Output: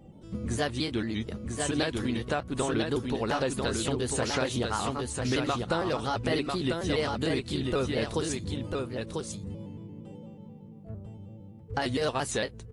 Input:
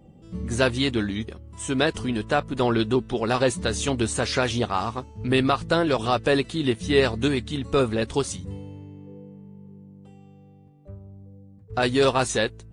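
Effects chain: pitch shift switched off and on +2 st, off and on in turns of 114 ms; compression 3:1, threshold -28 dBFS, peak gain reduction 10 dB; delay 995 ms -4 dB

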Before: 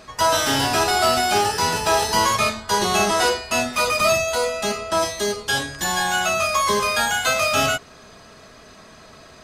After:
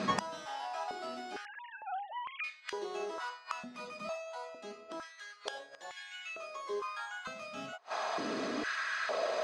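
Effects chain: 1.45–2.44 s: formants replaced by sine waves; inverted gate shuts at -21 dBFS, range -32 dB; distance through air 90 m; step-sequenced high-pass 2.2 Hz 200–2200 Hz; trim +7.5 dB

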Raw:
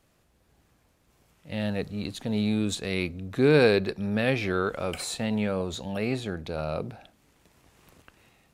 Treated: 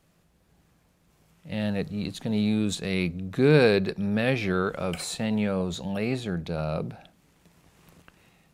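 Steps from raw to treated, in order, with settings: peaking EQ 170 Hz +11 dB 0.25 oct

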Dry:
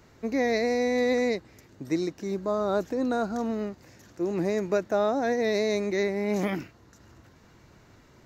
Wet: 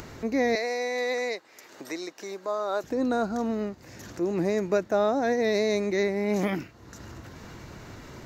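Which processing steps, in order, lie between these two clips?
0.55–2.84 s: high-pass 590 Hz 12 dB/octave; upward compressor, threshold -33 dBFS; trim +1 dB

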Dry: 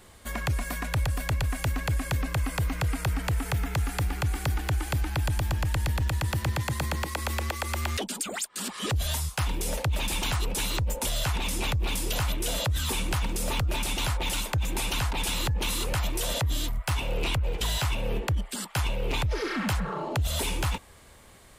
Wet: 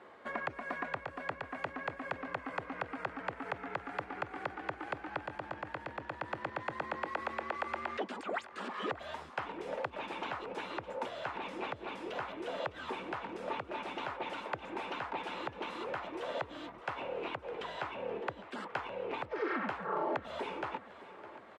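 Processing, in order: compression, threshold -31 dBFS, peak gain reduction 8 dB; Butterworth band-pass 760 Hz, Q 0.52; feedback delay 609 ms, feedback 57%, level -16 dB; trim +2.5 dB

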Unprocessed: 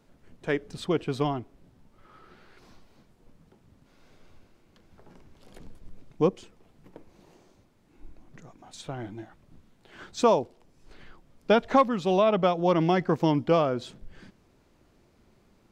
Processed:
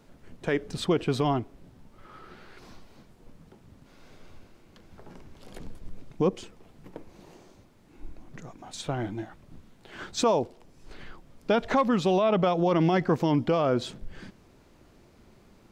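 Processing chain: peak limiter -20.5 dBFS, peak gain reduction 9.5 dB; trim +5.5 dB

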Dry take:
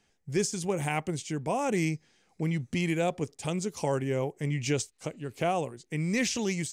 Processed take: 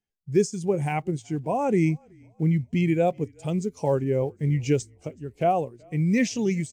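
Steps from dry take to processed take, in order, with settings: block-companded coder 5-bit; frequency-shifting echo 376 ms, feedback 52%, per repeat -36 Hz, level -20.5 dB; spectral contrast expander 1.5:1; trim +7 dB

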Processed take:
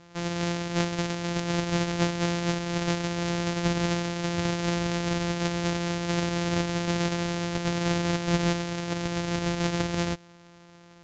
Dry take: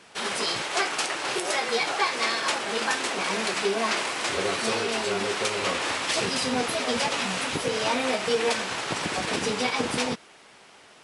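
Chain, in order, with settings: sorted samples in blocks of 256 samples; dynamic bell 1.1 kHz, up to -4 dB, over -39 dBFS, Q 1.3; steep low-pass 7.4 kHz 96 dB/octave

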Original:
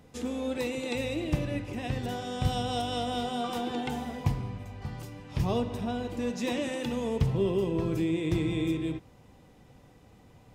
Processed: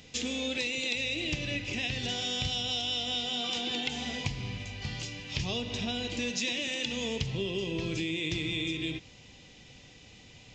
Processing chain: resonant high shelf 1.8 kHz +13.5 dB, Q 1.5; compression, threshold -29 dBFS, peak gain reduction 10.5 dB; resampled via 16 kHz

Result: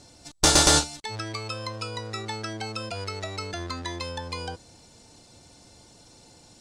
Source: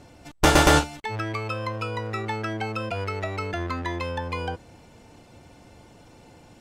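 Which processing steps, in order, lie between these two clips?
high-order bell 6.1 kHz +13.5 dB; trim -5 dB

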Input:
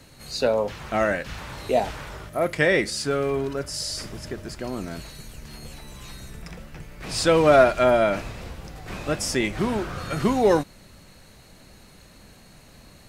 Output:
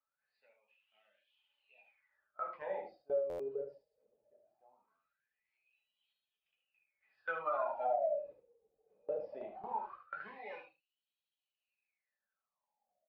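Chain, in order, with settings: bass shelf 140 Hz +4 dB; small resonant body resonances 570/810/2500 Hz, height 11 dB, ringing for 30 ms; resampled via 11.025 kHz; simulated room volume 170 m³, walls furnished, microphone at 1.5 m; harmonic-percussive split percussive -4 dB; wah-wah 0.2 Hz 450–3200 Hz, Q 14; compression 12:1, threshold -25 dBFS, peak gain reduction 14 dB; reverb removal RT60 0.66 s; gate with hold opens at -29 dBFS; on a send: delay 74 ms -8 dB; on the sum: buffer glitch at 3.29 s, samples 512, times 8; trim -5 dB

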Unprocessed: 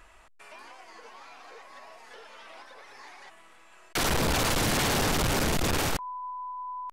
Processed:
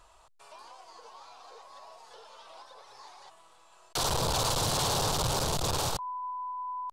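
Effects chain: ten-band graphic EQ 125 Hz +7 dB, 250 Hz -8 dB, 500 Hz +4 dB, 1 kHz +8 dB, 2 kHz -11 dB, 4 kHz +8 dB, 8 kHz +5 dB; trim -6 dB

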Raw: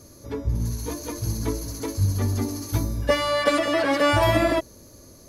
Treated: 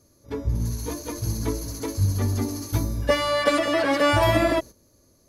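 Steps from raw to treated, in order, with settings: gate -35 dBFS, range -12 dB

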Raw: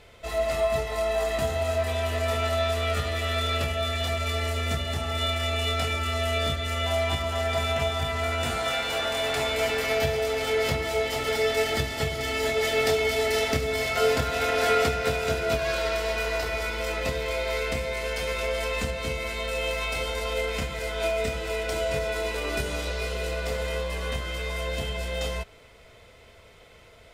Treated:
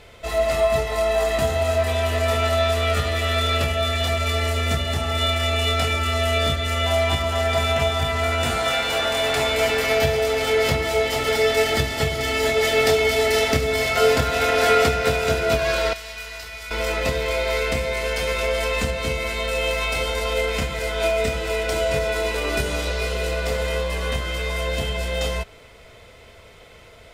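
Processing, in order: 15.93–16.71 s: amplifier tone stack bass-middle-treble 5-5-5; trim +5.5 dB

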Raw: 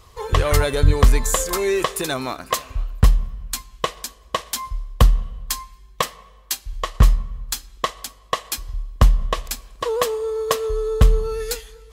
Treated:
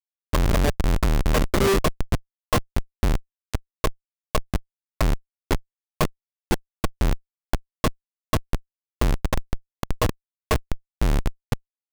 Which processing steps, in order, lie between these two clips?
two-slope reverb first 0.21 s, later 1.6 s, DRR -5 dB; Schmitt trigger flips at -9.5 dBFS; trim -4 dB

